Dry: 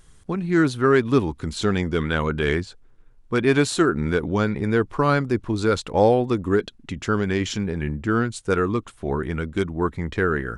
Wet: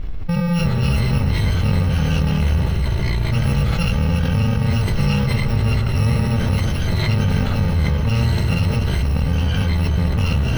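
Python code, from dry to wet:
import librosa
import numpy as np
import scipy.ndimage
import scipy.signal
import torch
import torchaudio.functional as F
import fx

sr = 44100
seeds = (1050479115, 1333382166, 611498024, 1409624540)

p1 = fx.bit_reversed(x, sr, seeds[0], block=128)
p2 = fx.low_shelf(p1, sr, hz=160.0, db=10.5)
p3 = p2 + fx.echo_alternate(p2, sr, ms=109, hz=1900.0, feedback_pct=80, wet_db=-8.5, dry=0)
p4 = fx.echo_pitch(p3, sr, ms=219, semitones=-5, count=2, db_per_echo=-6.0)
p5 = fx.air_absorb(p4, sr, metres=340.0)
y = fx.env_flatten(p5, sr, amount_pct=70)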